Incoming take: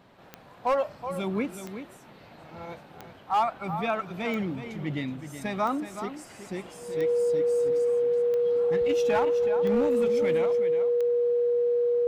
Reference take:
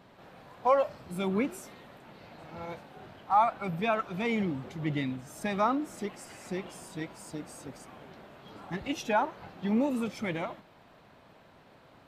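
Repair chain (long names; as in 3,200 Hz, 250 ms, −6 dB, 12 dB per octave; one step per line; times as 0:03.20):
clipped peaks rebuilt −18.5 dBFS
click removal
notch filter 480 Hz, Q 30
echo removal 373 ms −10.5 dB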